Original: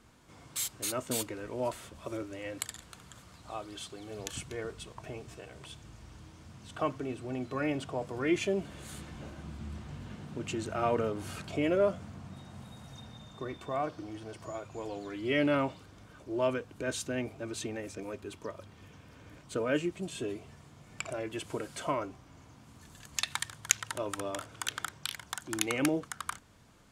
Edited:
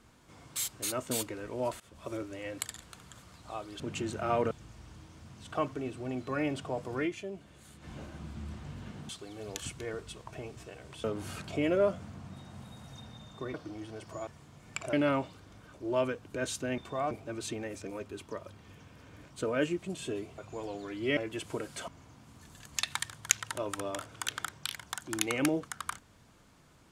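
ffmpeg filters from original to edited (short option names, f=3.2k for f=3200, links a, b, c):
-filter_complex "[0:a]asplit=16[a][b][c][d][e][f][g][h][i][j][k][l][m][n][o][p];[a]atrim=end=1.8,asetpts=PTS-STARTPTS,afade=t=out:st=1.796:d=0.004:c=hsin:silence=0.0841395[q];[b]atrim=start=1.8:end=3.802,asetpts=PTS-STARTPTS,afade=t=in:d=0.35:c=qsin:silence=0.0841395[r];[c]atrim=start=10.328:end=11.042[s];[d]atrim=start=5.748:end=8.34,asetpts=PTS-STARTPTS,afade=t=out:st=2.472:d=0.12:c=qsin:silence=0.316228[t];[e]atrim=start=8.34:end=9.04,asetpts=PTS-STARTPTS,volume=-10dB[u];[f]atrim=start=9.04:end=10.332,asetpts=PTS-STARTPTS,afade=t=in:d=0.12:c=qsin:silence=0.316228[v];[g]atrim=start=3.798:end=5.752[w];[h]atrim=start=11.038:end=13.542[x];[i]atrim=start=13.868:end=14.602[y];[j]atrim=start=20.508:end=21.172[z];[k]atrim=start=15.388:end=17.242[aa];[l]atrim=start=13.538:end=13.872[ab];[m]atrim=start=17.238:end=20.512[ac];[n]atrim=start=14.598:end=15.392[ad];[o]atrim=start=21.168:end=21.882[ae];[p]atrim=start=22.278[af];[q][r]concat=n=2:v=0:a=1[ag];[ag][s]acrossfade=d=0.004:c1=hsin:c2=hsin[ah];[t][u][v]concat=n=3:v=0:a=1[ai];[ah][ai]acrossfade=d=0.004:c1=hsin:c2=hsin[aj];[aj][w]acrossfade=d=0.004:c1=hsin:c2=hsin[ak];[ak][x]acrossfade=d=0.004:c1=hsin:c2=hsin[al];[al][y]acrossfade=d=0.004:c1=hsin:c2=hsin[am];[am][z]acrossfade=d=0.004:c1=hsin:c2=hsin[an];[an][aa]acrossfade=d=0.004:c1=hsin:c2=hsin[ao];[ao][ab]acrossfade=d=0.004:c1=hsin:c2=hsin[ap];[ap][ac]acrossfade=d=0.004:c1=hsin:c2=hsin[aq];[aq][ad]acrossfade=d=0.004:c1=hsin:c2=hsin[ar];[ar][ae]acrossfade=d=0.004:c1=hsin:c2=hsin[as];[as][af]acrossfade=d=0.004:c1=hsin:c2=hsin"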